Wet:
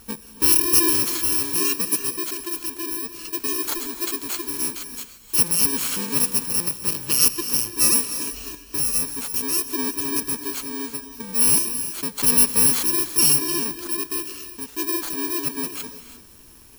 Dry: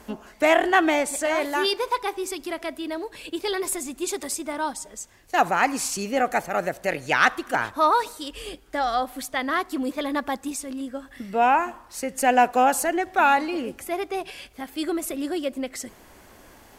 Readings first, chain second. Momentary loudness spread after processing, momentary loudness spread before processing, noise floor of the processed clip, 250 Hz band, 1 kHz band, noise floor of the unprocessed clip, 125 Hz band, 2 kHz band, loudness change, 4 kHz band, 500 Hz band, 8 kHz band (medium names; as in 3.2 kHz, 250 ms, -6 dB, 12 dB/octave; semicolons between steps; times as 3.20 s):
13 LU, 14 LU, -46 dBFS, -1.5 dB, -14.0 dB, -51 dBFS, +7.5 dB, -8.0 dB, +4.5 dB, +6.5 dB, -8.5 dB, +12.5 dB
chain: bit-reversed sample order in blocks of 64 samples; gated-style reverb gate 370 ms rising, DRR 10 dB; trim +1.5 dB